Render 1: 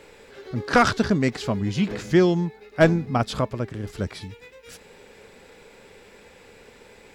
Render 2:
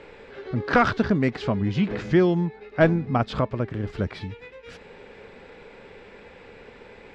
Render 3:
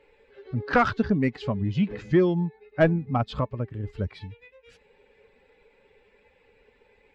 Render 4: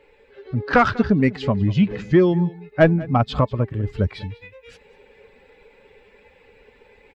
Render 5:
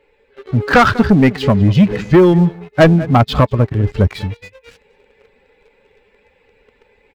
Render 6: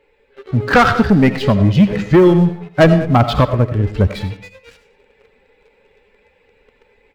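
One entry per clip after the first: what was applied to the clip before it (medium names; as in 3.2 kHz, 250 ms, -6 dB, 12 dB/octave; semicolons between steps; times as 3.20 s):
low-pass 3 kHz 12 dB/octave; in parallel at +2 dB: compression, threshold -27 dBFS, peak gain reduction 15 dB; on the sum: trim -3.5 dB
expander on every frequency bin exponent 1.5; treble shelf 4.1 kHz -5.5 dB; in parallel at -6 dB: saturation -17 dBFS, distortion -12 dB; on the sum: trim -2.5 dB
in parallel at +0.5 dB: gain riding within 4 dB 0.5 s; on the sum: delay 196 ms -20.5 dB
waveshaping leveller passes 2; trim +1.5 dB
reverberation RT60 0.40 s, pre-delay 45 ms, DRR 10 dB; trim -1 dB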